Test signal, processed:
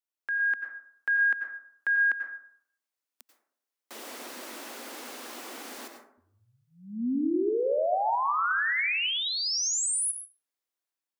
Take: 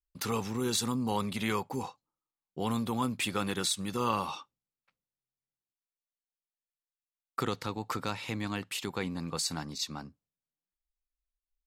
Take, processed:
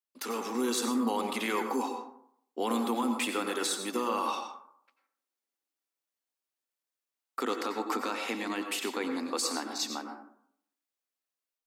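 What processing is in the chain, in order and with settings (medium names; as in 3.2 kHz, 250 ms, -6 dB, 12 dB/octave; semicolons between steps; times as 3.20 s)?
elliptic high-pass 240 Hz, stop band 40 dB; dynamic bell 4 kHz, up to -3 dB, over -49 dBFS, Q 2.4; peak limiter -26 dBFS; level rider gain up to 5 dB; plate-style reverb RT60 0.65 s, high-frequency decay 0.4×, pre-delay 80 ms, DRR 5 dB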